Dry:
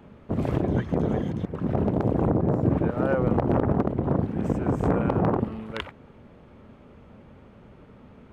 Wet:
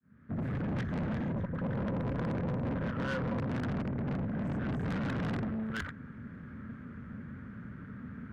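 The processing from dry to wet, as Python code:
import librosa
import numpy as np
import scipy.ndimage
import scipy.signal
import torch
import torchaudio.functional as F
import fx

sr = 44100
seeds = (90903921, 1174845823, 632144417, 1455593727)

y = fx.fade_in_head(x, sr, length_s=0.86)
y = fx.clip_asym(y, sr, top_db=-23.5, bottom_db=-14.0)
y = fx.curve_eq(y, sr, hz=(250.0, 360.0, 820.0, 1600.0, 2700.0), db=(0, -13, -19, 5, -15))
y = fx.rider(y, sr, range_db=4, speed_s=2.0)
y = scipy.signal.sosfilt(scipy.signal.butter(2, 84.0, 'highpass', fs=sr, output='sos'), y)
y = fx.tube_stage(y, sr, drive_db=36.0, bias=0.3)
y = fx.small_body(y, sr, hz=(530.0, 990.0), ring_ms=45, db=8, at=(1.3, 3.47))
y = y * librosa.db_to_amplitude(4.5)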